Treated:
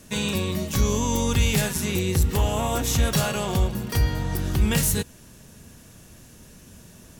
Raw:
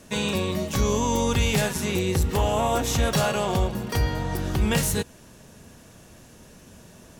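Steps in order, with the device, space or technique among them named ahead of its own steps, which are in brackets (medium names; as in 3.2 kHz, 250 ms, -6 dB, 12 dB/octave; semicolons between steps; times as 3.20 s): smiley-face EQ (bass shelf 150 Hz +3.5 dB; peaking EQ 680 Hz -4.5 dB 1.7 oct; treble shelf 9.8 kHz +7.5 dB)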